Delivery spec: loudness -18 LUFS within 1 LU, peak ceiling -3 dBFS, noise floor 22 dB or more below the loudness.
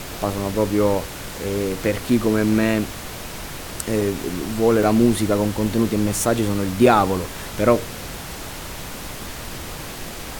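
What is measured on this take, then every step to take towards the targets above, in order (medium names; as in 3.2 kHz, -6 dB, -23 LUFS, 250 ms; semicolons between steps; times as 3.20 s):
dropouts 3; longest dropout 3.3 ms; noise floor -33 dBFS; noise floor target -43 dBFS; loudness -20.5 LUFS; peak level -2.0 dBFS; loudness target -18.0 LUFS
-> interpolate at 4.01/4.83/6.86 s, 3.3 ms; noise print and reduce 10 dB; trim +2.5 dB; peak limiter -3 dBFS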